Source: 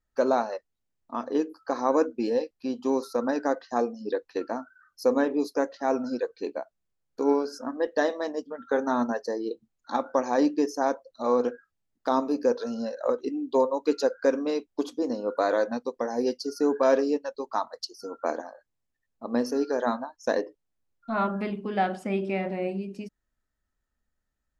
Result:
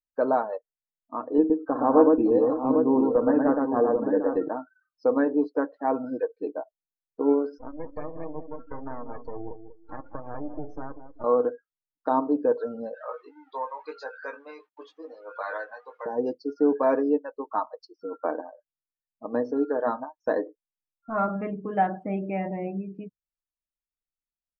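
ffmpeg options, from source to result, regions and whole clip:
ffmpeg -i in.wav -filter_complex "[0:a]asettb=1/sr,asplit=3[link_01][link_02][link_03];[link_01]atrim=end=1.384[link_04];[link_02]atrim=start=1.38:end=4.48,asetpts=PTS-STARTPTS,afade=type=in:duration=0.004:curve=qsin,afade=type=out:start_time=3.096:duration=0.004:curve=qsin,aemphasis=mode=reproduction:type=bsi,aecho=1:1:57|117|563|749|800:0.237|0.708|0.168|0.251|0.447,atrim=end_sample=136710[link_05];[link_03]atrim=start=4.476[link_06];[link_04][link_05]acrossfade=duration=0.004:curve1=hsin:curve2=qsin[link_07];[link_07][link_06]acrossfade=duration=0.004:curve1=qsin:curve2=hsin,asettb=1/sr,asplit=3[link_08][link_09][link_10];[link_08]atrim=end=7.584[link_11];[link_09]atrim=start=7.58:end=11.24,asetpts=PTS-STARTPTS,afade=type=in:duration=0.004:curve=qsin,afade=type=out:start_time=3.656:duration=0.004:curve=qsin,acompressor=threshold=-30dB:ratio=5:attack=3.2:release=140:knee=1:detection=peak,aeval=exprs='max(val(0),0)':channel_layout=same,asplit=2[link_12][link_13];[link_13]adelay=192,lowpass=frequency=3300:poles=1,volume=-8.5dB,asplit=2[link_14][link_15];[link_15]adelay=192,lowpass=frequency=3300:poles=1,volume=0.41,asplit=2[link_16][link_17];[link_17]adelay=192,lowpass=frequency=3300:poles=1,volume=0.41,asplit=2[link_18][link_19];[link_19]adelay=192,lowpass=frequency=3300:poles=1,volume=0.41,asplit=2[link_20][link_21];[link_21]adelay=192,lowpass=frequency=3300:poles=1,volume=0.41[link_22];[link_12][link_14][link_16][link_18][link_20][link_22]amix=inputs=6:normalize=0,atrim=end_sample=161406[link_23];[link_10]atrim=start=11.236[link_24];[link_11][link_23]acrossfade=duration=0.004:curve1=hsin:curve2=qsin[link_25];[link_25][link_24]acrossfade=duration=0.004:curve1=qsin:curve2=hsin,asettb=1/sr,asplit=3[link_26][link_27][link_28];[link_26]atrim=end=12.944[link_29];[link_27]atrim=start=12.94:end=16.06,asetpts=PTS-STARTPTS,afade=type=in:duration=0.004:curve=qsin,afade=type=out:start_time=3.116:duration=0.004:curve=qsin,aeval=exprs='val(0)+0.5*0.0158*sgn(val(0))':channel_layout=same,highpass=1200,asplit=2[link_30][link_31];[link_31]adelay=19,volume=-4.5dB[link_32];[link_30][link_32]amix=inputs=2:normalize=0,atrim=end_sample=137592[link_33];[link_28]atrim=start=16.056[link_34];[link_29][link_33]acrossfade=duration=0.004:curve1=hsin:curve2=qsin[link_35];[link_35][link_34]acrossfade=duration=0.004:curve1=qsin:curve2=hsin,afftdn=noise_reduction=22:noise_floor=-40,lowpass=1700,aecho=1:1:6.5:0.52" out.wav

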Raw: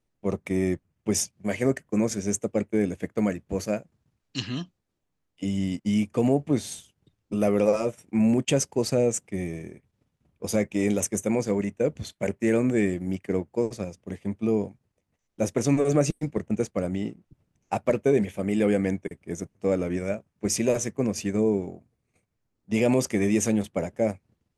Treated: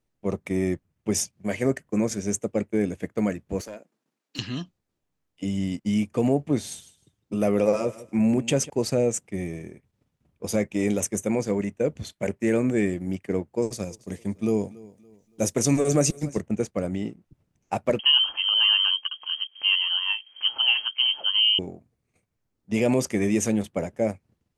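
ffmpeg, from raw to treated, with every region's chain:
ffmpeg -i in.wav -filter_complex "[0:a]asettb=1/sr,asplit=3[link_01][link_02][link_03];[link_01]atrim=end=3.614[link_04];[link_02]atrim=start=3.61:end=4.39,asetpts=PTS-STARTPTS,afade=type=in:duration=0.004:curve=qsin,afade=type=out:start_time=0.776:duration=0.004:curve=qsin,highpass=frequency=240:width=0.5412,highpass=frequency=240:width=1.3066,acompressor=threshold=-35dB:ratio=3:attack=3.2:release=140:knee=1:detection=peak,volume=32.5dB,asoftclip=hard,volume=-32.5dB[link_05];[link_03]atrim=start=4.386[link_06];[link_04][link_05]acrossfade=duration=0.004:curve1=hsin:curve2=qsin[link_07];[link_07][link_06]acrossfade=duration=0.004:curve1=qsin:curve2=hsin,asettb=1/sr,asplit=3[link_08][link_09][link_10];[link_08]atrim=end=6.664[link_11];[link_09]atrim=start=6.66:end=8.7,asetpts=PTS-STARTPTS,afade=type=in:duration=0.004:curve=qsin,afade=type=out:start_time=2.036:duration=0.004:curve=qsin,highpass=41,aecho=1:1:155|310:0.141|0.0254,atrim=end_sample=89964[link_12];[link_10]atrim=start=8.696[link_13];[link_11][link_12]acrossfade=duration=0.004:curve1=hsin:curve2=qsin[link_14];[link_14][link_13]acrossfade=duration=0.004:curve1=qsin:curve2=hsin,asettb=1/sr,asplit=3[link_15][link_16][link_17];[link_15]atrim=end=13.624[link_18];[link_16]atrim=start=13.62:end=16.41,asetpts=PTS-STARTPTS,afade=type=in:duration=0.004:curve=qsin,afade=type=out:start_time=2.786:duration=0.004:curve=qsin,bass=frequency=250:gain=1,treble=frequency=4000:gain=10,aecho=1:1:283|566|849:0.0841|0.0303|0.0109,atrim=end_sample=123039[link_19];[link_17]atrim=start=16.406[link_20];[link_18][link_19]acrossfade=duration=0.004:curve1=hsin:curve2=qsin[link_21];[link_21][link_20]acrossfade=duration=0.004:curve1=qsin:curve2=hsin,asettb=1/sr,asplit=3[link_22][link_23][link_24];[link_22]atrim=end=17.994[link_25];[link_23]atrim=start=17.99:end=21.59,asetpts=PTS-STARTPTS,afade=type=in:duration=0.004:curve=qsin,afade=type=out:start_time=3.596:duration=0.004:curve=qsin,acompressor=mode=upward:threshold=-26dB:ratio=2.5:attack=3.2:release=140:knee=2.83:detection=peak,lowshelf=frequency=230:gain=5.5,lowpass=frequency=2800:width_type=q:width=0.5098,lowpass=frequency=2800:width_type=q:width=0.6013,lowpass=frequency=2800:width_type=q:width=0.9,lowpass=frequency=2800:width_type=q:width=2.563,afreqshift=-3300[link_26];[link_24]atrim=start=21.586[link_27];[link_25][link_26]acrossfade=duration=0.004:curve1=hsin:curve2=qsin[link_28];[link_28][link_27]acrossfade=duration=0.004:curve1=qsin:curve2=hsin" out.wav

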